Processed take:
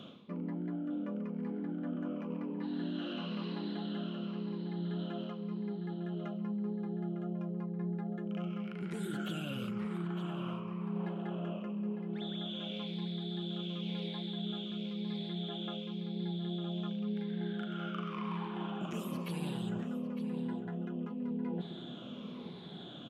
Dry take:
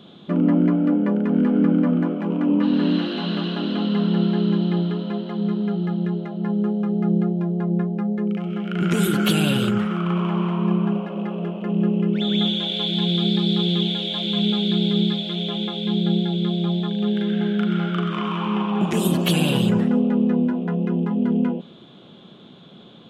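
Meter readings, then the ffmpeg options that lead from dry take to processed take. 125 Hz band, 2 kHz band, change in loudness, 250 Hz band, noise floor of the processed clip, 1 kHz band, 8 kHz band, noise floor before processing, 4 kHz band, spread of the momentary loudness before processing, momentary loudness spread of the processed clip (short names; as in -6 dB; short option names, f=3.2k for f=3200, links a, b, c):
-16.5 dB, -16.5 dB, -17.0 dB, -17.0 dB, -45 dBFS, -15.0 dB, under -20 dB, -45 dBFS, -19.0 dB, 6 LU, 2 LU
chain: -filter_complex "[0:a]afftfilt=real='re*pow(10,8/40*sin(2*PI*(0.88*log(max(b,1)*sr/1024/100)/log(2)-(-0.95)*(pts-256)/sr)))':imag='im*pow(10,8/40*sin(2*PI*(0.88*log(max(b,1)*sr/1024/100)/log(2)-(-0.95)*(pts-256)/sr)))':win_size=1024:overlap=0.75,areverse,acompressor=threshold=-33dB:ratio=8,areverse,highpass=41,asplit=2[a][b];[b]adelay=904,lowpass=f=2.4k:p=1,volume=-9.5dB,asplit=2[c][d];[d]adelay=904,lowpass=f=2.4k:p=1,volume=0.24,asplit=2[e][f];[f]adelay=904,lowpass=f=2.4k:p=1,volume=0.24[g];[a][c][e][g]amix=inputs=4:normalize=0,acrossover=split=2700[h][i];[i]acompressor=threshold=-46dB:ratio=4:attack=1:release=60[j];[h][j]amix=inputs=2:normalize=0,volume=-3dB"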